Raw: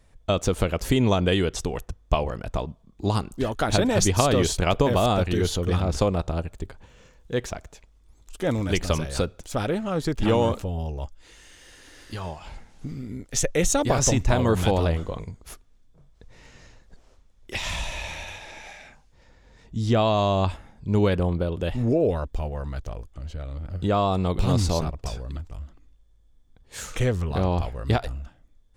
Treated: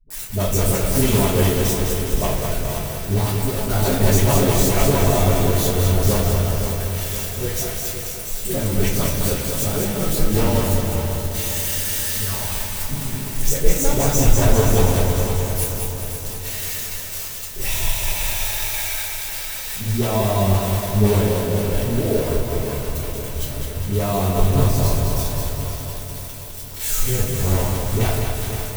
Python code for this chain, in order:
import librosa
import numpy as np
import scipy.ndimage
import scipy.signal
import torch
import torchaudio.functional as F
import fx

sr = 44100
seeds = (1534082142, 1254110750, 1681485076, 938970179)

p1 = x + 0.5 * 10.0 ** (-14.0 / 20.0) * np.diff(np.sign(x), prepend=np.sign(x[:1]))
p2 = fx.high_shelf(p1, sr, hz=3000.0, db=-10.5)
p3 = fx.quant_companded(p2, sr, bits=2)
p4 = p2 + (p3 * 10.0 ** (-11.0 / 20.0))
p5 = fx.high_shelf(p4, sr, hz=6400.0, db=11.0)
p6 = fx.dispersion(p5, sr, late='highs', ms=104.0, hz=310.0)
p7 = p6 + fx.echo_feedback(p6, sr, ms=521, feedback_pct=53, wet_db=-9.0, dry=0)
p8 = fx.room_shoebox(p7, sr, seeds[0], volume_m3=44.0, walls='mixed', distance_m=1.7)
p9 = fx.echo_crushed(p8, sr, ms=206, feedback_pct=55, bits=5, wet_db=-4.5)
y = p9 * 10.0 ** (-12.0 / 20.0)